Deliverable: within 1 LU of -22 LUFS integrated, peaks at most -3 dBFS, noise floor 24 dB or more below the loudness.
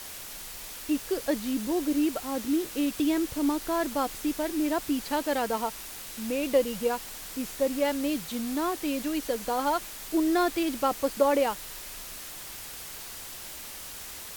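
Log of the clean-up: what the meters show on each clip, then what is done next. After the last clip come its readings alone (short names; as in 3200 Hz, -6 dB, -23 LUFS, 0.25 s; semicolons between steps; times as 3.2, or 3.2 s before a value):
noise floor -41 dBFS; noise floor target -54 dBFS; loudness -29.5 LUFS; peak -11.5 dBFS; loudness target -22.0 LUFS
-> denoiser 13 dB, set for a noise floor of -41 dBFS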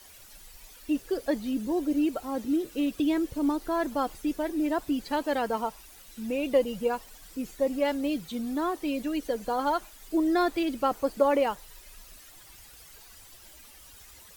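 noise floor -51 dBFS; noise floor target -53 dBFS
-> denoiser 6 dB, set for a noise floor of -51 dBFS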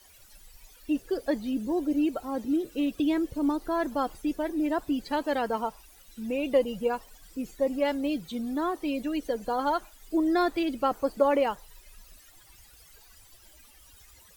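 noise floor -56 dBFS; loudness -29.0 LUFS; peak -12.0 dBFS; loudness target -22.0 LUFS
-> gain +7 dB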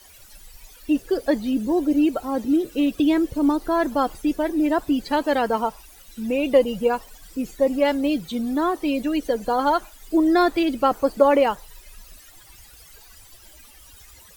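loudness -22.0 LUFS; peak -5.0 dBFS; noise floor -49 dBFS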